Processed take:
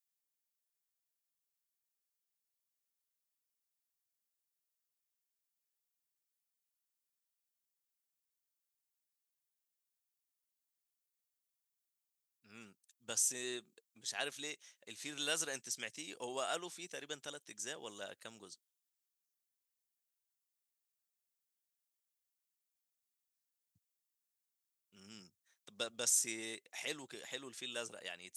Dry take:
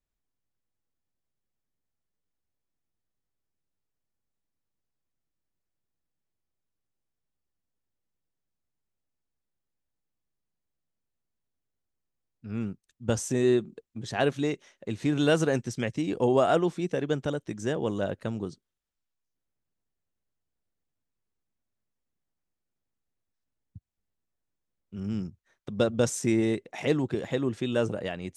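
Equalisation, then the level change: differentiator; +3.0 dB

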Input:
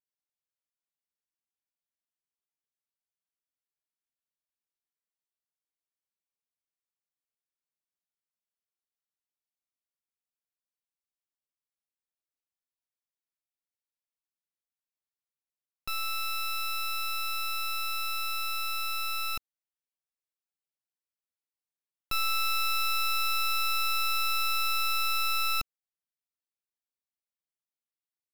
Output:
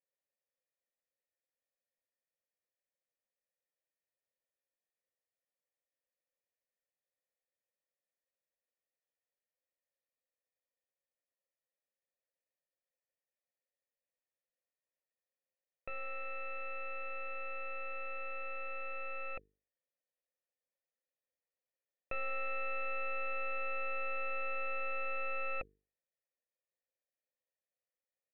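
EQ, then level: vocal tract filter e; bell 710 Hz +6 dB 0.51 oct; notches 50/100/150/200/250/300/350/400/450 Hz; +12.5 dB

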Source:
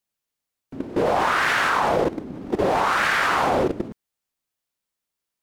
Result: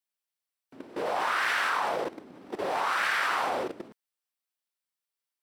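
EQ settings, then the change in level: HPF 760 Hz 6 dB/oct; notch 6700 Hz, Q 10; -5.5 dB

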